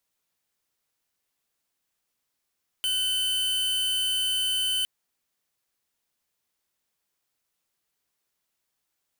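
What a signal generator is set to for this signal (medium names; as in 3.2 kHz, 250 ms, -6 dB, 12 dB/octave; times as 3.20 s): tone square 3.04 kHz -26 dBFS 2.01 s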